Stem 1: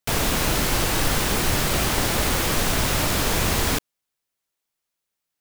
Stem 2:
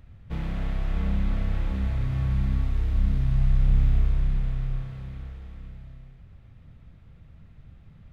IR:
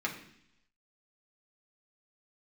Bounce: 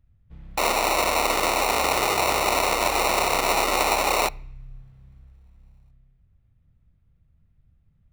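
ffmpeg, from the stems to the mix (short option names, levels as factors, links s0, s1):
-filter_complex "[0:a]tiltshelf=f=1300:g=-9.5,acrusher=samples=27:mix=1:aa=0.000001,highpass=720,adelay=500,volume=1,asplit=2[s0][s1];[s1]volume=0.0841[s2];[1:a]acompressor=threshold=0.0631:ratio=6,volume=0.112[s3];[2:a]atrim=start_sample=2205[s4];[s2][s4]afir=irnorm=-1:irlink=0[s5];[s0][s3][s5]amix=inputs=3:normalize=0,lowshelf=f=160:g=8.5"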